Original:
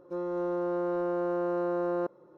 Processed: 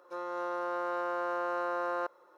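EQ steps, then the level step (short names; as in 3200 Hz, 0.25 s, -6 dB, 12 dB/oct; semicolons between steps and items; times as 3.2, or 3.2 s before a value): HPF 1100 Hz 12 dB/oct; +8.5 dB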